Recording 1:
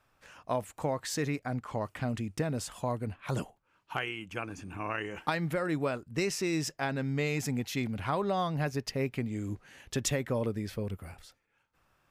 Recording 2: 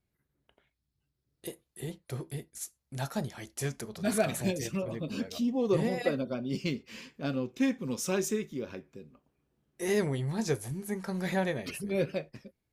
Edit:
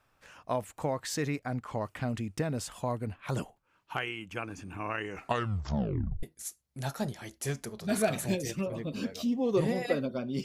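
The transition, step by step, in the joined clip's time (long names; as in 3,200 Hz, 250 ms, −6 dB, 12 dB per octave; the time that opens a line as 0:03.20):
recording 1
0:05.07: tape stop 1.16 s
0:06.23: continue with recording 2 from 0:02.39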